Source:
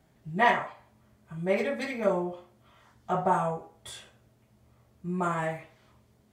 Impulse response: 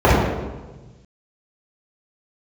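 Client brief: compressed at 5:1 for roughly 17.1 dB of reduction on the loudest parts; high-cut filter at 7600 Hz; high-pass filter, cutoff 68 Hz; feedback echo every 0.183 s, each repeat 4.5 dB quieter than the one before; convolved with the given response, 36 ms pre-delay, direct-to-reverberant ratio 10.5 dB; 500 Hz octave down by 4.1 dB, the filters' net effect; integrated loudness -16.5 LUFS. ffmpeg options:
-filter_complex "[0:a]highpass=68,lowpass=7.6k,equalizer=f=500:t=o:g=-5.5,acompressor=threshold=-39dB:ratio=5,aecho=1:1:183|366|549|732|915|1098|1281|1464|1647:0.596|0.357|0.214|0.129|0.0772|0.0463|0.0278|0.0167|0.01,asplit=2[a][b];[1:a]atrim=start_sample=2205,adelay=36[c];[b][c]afir=irnorm=-1:irlink=0,volume=-39.5dB[d];[a][d]amix=inputs=2:normalize=0,volume=24.5dB"

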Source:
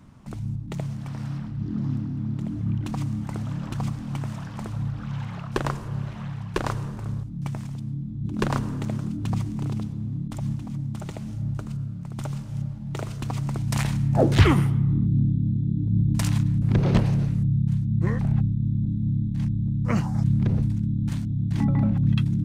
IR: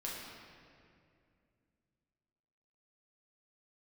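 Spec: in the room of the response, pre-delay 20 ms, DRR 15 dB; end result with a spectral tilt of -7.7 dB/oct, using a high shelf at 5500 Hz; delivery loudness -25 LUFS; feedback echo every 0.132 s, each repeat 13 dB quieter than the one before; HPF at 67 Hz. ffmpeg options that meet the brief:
-filter_complex "[0:a]highpass=67,highshelf=f=5.5k:g=7,aecho=1:1:132|264|396:0.224|0.0493|0.0108,asplit=2[a][b];[1:a]atrim=start_sample=2205,adelay=20[c];[b][c]afir=irnorm=-1:irlink=0,volume=-16dB[d];[a][d]amix=inputs=2:normalize=0,volume=-0.5dB"

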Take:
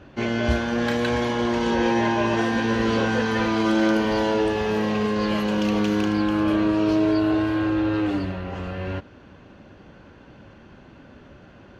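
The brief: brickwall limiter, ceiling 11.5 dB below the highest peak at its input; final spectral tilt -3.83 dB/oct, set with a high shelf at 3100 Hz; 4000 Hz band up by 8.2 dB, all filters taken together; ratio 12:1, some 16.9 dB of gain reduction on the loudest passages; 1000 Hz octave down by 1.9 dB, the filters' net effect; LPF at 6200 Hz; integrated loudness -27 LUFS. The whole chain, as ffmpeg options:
-af "lowpass=6.2k,equalizer=f=1k:t=o:g=-3.5,highshelf=f=3.1k:g=8.5,equalizer=f=4k:t=o:g=5.5,acompressor=threshold=-34dB:ratio=12,volume=17.5dB,alimiter=limit=-18.5dB:level=0:latency=1"

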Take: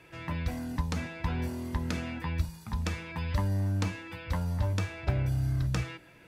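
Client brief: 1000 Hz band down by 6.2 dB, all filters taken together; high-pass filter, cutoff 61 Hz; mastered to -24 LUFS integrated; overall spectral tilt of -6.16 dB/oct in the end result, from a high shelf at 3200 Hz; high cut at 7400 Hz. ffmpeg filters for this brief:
-af "highpass=61,lowpass=7.4k,equalizer=f=1k:t=o:g=-8,highshelf=f=3.2k:g=4.5,volume=9.5dB"

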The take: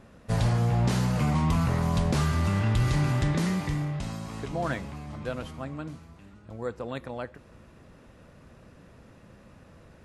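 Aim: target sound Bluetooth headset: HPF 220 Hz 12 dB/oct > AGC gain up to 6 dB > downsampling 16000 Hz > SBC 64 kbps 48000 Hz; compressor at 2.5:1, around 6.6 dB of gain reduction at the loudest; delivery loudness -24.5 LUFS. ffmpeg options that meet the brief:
-af "acompressor=threshold=-31dB:ratio=2.5,highpass=220,dynaudnorm=m=6dB,aresample=16000,aresample=44100,volume=14dB" -ar 48000 -c:a sbc -b:a 64k

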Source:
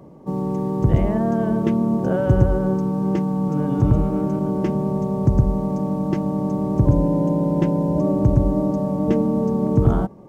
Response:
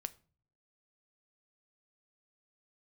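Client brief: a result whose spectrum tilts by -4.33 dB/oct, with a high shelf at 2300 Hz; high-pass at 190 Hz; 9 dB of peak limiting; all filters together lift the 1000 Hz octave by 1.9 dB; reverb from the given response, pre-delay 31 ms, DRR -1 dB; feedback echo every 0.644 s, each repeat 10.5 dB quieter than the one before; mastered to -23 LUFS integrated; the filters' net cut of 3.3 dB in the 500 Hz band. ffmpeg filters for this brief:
-filter_complex "[0:a]highpass=190,equalizer=f=500:t=o:g=-5,equalizer=f=1k:t=o:g=4.5,highshelf=f=2.3k:g=-3.5,alimiter=limit=-18dB:level=0:latency=1,aecho=1:1:644|1288|1932:0.299|0.0896|0.0269,asplit=2[a][b];[1:a]atrim=start_sample=2205,adelay=31[c];[b][c]afir=irnorm=-1:irlink=0,volume=3.5dB[d];[a][d]amix=inputs=2:normalize=0,volume=-1.5dB"

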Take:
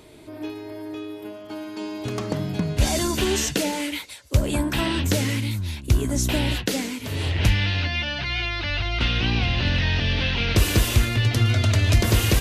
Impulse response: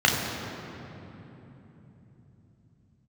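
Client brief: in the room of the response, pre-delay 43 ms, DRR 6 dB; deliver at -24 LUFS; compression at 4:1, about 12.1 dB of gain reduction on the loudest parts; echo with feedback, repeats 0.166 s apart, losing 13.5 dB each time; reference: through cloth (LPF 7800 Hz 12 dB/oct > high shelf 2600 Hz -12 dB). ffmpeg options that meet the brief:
-filter_complex "[0:a]acompressor=threshold=-28dB:ratio=4,aecho=1:1:166|332:0.211|0.0444,asplit=2[a][b];[1:a]atrim=start_sample=2205,adelay=43[c];[b][c]afir=irnorm=-1:irlink=0,volume=-24.5dB[d];[a][d]amix=inputs=2:normalize=0,lowpass=7.8k,highshelf=f=2.6k:g=-12,volume=6.5dB"

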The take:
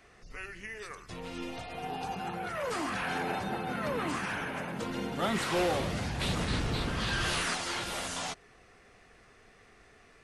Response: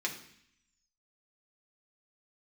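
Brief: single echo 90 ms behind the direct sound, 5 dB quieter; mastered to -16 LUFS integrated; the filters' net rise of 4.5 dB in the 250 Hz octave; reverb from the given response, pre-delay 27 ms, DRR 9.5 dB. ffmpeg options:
-filter_complex "[0:a]equalizer=f=250:t=o:g=6,aecho=1:1:90:0.562,asplit=2[a][b];[1:a]atrim=start_sample=2205,adelay=27[c];[b][c]afir=irnorm=-1:irlink=0,volume=-14dB[d];[a][d]amix=inputs=2:normalize=0,volume=14.5dB"

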